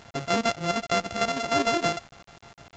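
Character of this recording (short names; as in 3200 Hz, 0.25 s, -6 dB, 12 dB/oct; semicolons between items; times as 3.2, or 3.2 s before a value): a buzz of ramps at a fixed pitch in blocks of 64 samples; chopped level 6.6 Hz, depth 60%, duty 70%; a quantiser's noise floor 8-bit, dither none; µ-law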